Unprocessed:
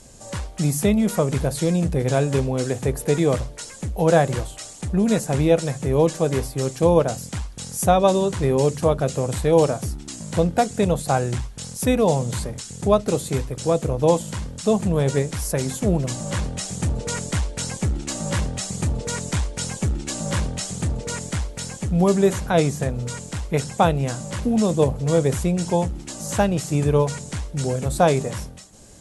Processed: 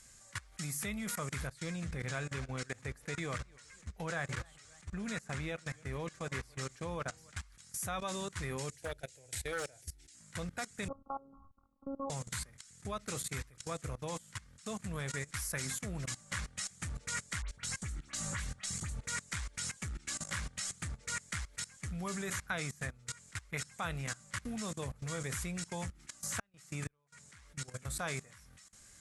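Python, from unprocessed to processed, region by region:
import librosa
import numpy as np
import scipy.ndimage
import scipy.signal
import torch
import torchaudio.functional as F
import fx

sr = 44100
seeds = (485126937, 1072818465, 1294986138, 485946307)

y = fx.chain(x, sr, fx.lowpass(hz=9600.0, slope=12),
    fx.high_shelf(hz=6300.0, db=-6.0),
    fx.echo_warbled(ms=276, feedback_pct=48, rate_hz=2.8, cents=153, wet_db=-19), at=(1.47, 7.37))
y = fx.chain(y, sr, fx.fixed_phaser(hz=480.0, stages=4),
    fx.clip_hard(threshold_db=-13.5), at=(8.71, 10.15))
y = fx.chain(y, sr, fx.brickwall_lowpass(high_hz=1300.0),
    fx.robotise(hz=274.0), at=(10.88, 12.1))
y = fx.chain(y, sr, fx.low_shelf(hz=96.0, db=6.5),
    fx.notch(hz=5100.0, q=25.0),
    fx.dispersion(late='highs', ms=68.0, hz=2600.0), at=(17.42, 19.04))
y = fx.chain(y, sr, fx.highpass(hz=98.0, slope=6),
    fx.high_shelf(hz=2800.0, db=-2.5),
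    fx.gate_flip(shuts_db=-12.0, range_db=-32), at=(26.39, 27.75))
y = fx.tone_stack(y, sr, knobs='5-5-5')
y = fx.level_steps(y, sr, step_db=20)
y = fx.band_shelf(y, sr, hz=1600.0, db=8.5, octaves=1.2)
y = y * librosa.db_to_amplitude(1.0)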